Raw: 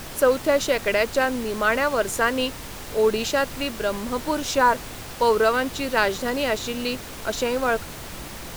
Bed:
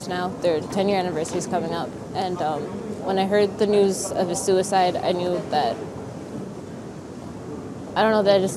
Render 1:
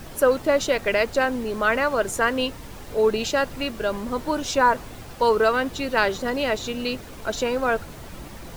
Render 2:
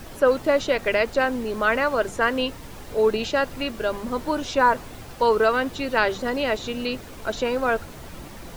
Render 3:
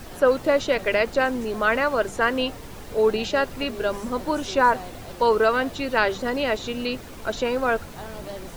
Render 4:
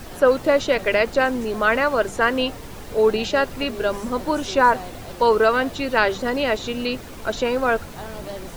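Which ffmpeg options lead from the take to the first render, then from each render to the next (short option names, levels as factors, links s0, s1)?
-af "afftdn=nr=8:nf=-37"
-filter_complex "[0:a]bandreject=f=50:t=h:w=6,bandreject=f=100:t=h:w=6,bandreject=f=150:t=h:w=6,bandreject=f=200:t=h:w=6,acrossover=split=4700[s0][s1];[s1]acompressor=threshold=0.00708:ratio=4:attack=1:release=60[s2];[s0][s2]amix=inputs=2:normalize=0"
-filter_complex "[1:a]volume=0.1[s0];[0:a][s0]amix=inputs=2:normalize=0"
-af "volume=1.33"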